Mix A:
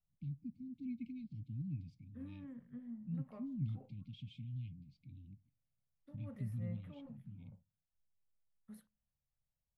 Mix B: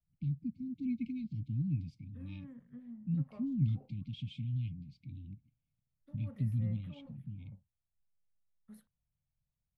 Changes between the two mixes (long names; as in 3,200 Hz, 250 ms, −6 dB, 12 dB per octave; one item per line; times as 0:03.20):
first voice +8.5 dB
reverb: off